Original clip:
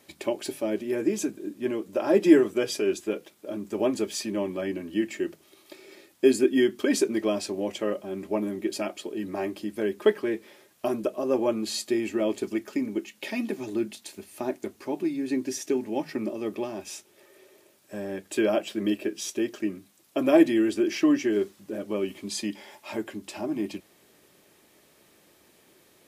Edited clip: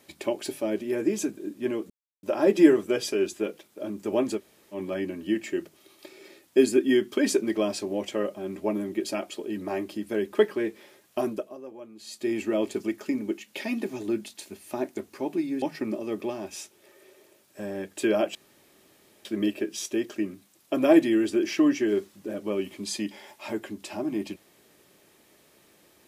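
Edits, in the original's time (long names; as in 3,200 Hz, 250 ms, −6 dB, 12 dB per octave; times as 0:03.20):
0:01.90: splice in silence 0.33 s
0:04.05–0:04.43: fill with room tone, crossfade 0.10 s
0:10.95–0:12.00: duck −18.5 dB, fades 0.42 s quadratic
0:15.29–0:15.96: remove
0:18.69: splice in room tone 0.90 s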